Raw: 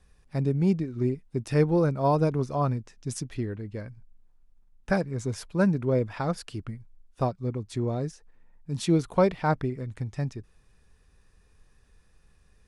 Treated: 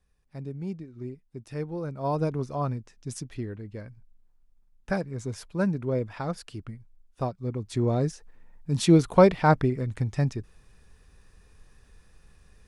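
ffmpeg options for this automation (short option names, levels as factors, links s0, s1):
-af "volume=1.78,afade=t=in:st=1.81:d=0.42:silence=0.398107,afade=t=in:st=7.38:d=0.64:silence=0.398107"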